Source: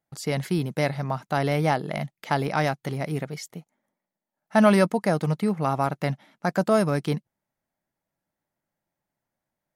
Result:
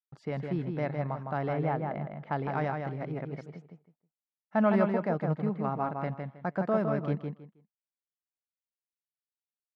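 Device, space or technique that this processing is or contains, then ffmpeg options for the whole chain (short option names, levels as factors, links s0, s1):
hearing-loss simulation: -filter_complex "[0:a]lowpass=1800,agate=range=0.0224:threshold=0.00251:ratio=3:detection=peak,asettb=1/sr,asplit=3[s0][s1][s2];[s0]atrim=end=1.534[s3];[s1]atrim=start=1.53:end=2.32,asetpts=PTS-STARTPTS,afade=t=in:d=0.004:c=qsin,afade=t=out:st=0.786:d=0.004:c=qsin,aemphasis=mode=reproduction:type=75kf[s4];[s2]atrim=start=2.316[s5];[s3][s4]acrossfade=d=0.004:c1=hsin:c2=qsin[s6];[s6][s5]acrossfade=d=0.004:c1=qsin:c2=hsin,asplit=2[s7][s8];[s8]adelay=159,lowpass=f=4900:p=1,volume=0.596,asplit=2[s9][s10];[s10]adelay=159,lowpass=f=4900:p=1,volume=0.22,asplit=2[s11][s12];[s12]adelay=159,lowpass=f=4900:p=1,volume=0.22[s13];[s7][s9][s11][s13]amix=inputs=4:normalize=0,volume=0.422"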